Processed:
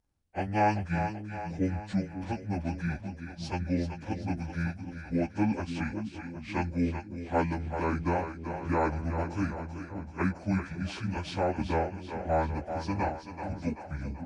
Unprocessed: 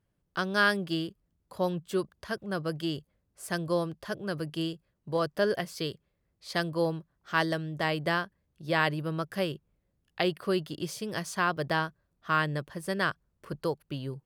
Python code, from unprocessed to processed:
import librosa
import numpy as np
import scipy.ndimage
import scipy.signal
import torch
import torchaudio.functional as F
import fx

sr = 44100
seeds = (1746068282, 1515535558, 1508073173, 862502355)

p1 = fx.pitch_bins(x, sr, semitones=-11.5)
y = p1 + fx.echo_split(p1, sr, split_hz=310.0, low_ms=551, high_ms=384, feedback_pct=52, wet_db=-8, dry=0)